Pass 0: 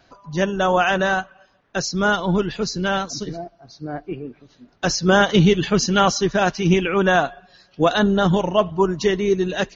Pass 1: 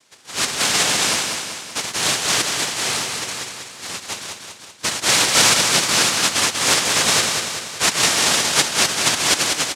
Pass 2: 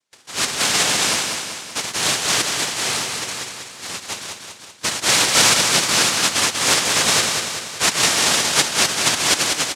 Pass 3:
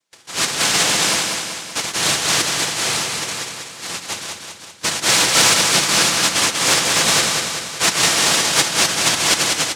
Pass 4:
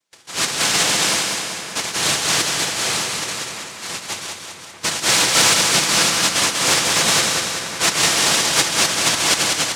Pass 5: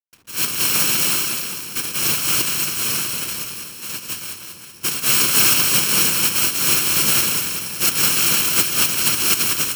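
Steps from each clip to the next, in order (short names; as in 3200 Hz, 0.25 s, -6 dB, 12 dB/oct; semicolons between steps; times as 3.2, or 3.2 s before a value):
noise vocoder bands 1; on a send: feedback echo 0.192 s, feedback 55%, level -5 dB; on the sum: gain -1.5 dB
gate with hold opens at -35 dBFS
in parallel at -4.5 dB: soft clip -14.5 dBFS, distortion -12 dB; on the sum: shoebox room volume 2400 m³, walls furnished, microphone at 0.72 m; gain -2 dB
split-band echo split 2500 Hz, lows 0.639 s, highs 0.138 s, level -13 dB; gain -1 dB
FFT order left unsorted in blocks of 64 samples; backlash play -42 dBFS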